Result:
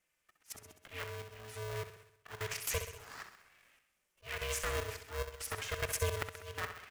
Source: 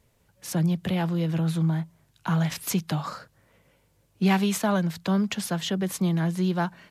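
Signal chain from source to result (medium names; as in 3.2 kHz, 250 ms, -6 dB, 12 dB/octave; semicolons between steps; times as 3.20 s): frequency weighting D; gate -55 dBFS, range -8 dB; bass shelf 170 Hz -8 dB; level held to a coarse grid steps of 14 dB; slow attack 605 ms; compression 2.5:1, threshold -40 dBFS, peak gain reduction 10 dB; static phaser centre 1.6 kHz, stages 4; touch-sensitive flanger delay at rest 3.4 ms, full sweep at -37.5 dBFS; feedback delay 65 ms, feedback 57%, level -8.5 dB; polarity switched at an audio rate 270 Hz; trim +9 dB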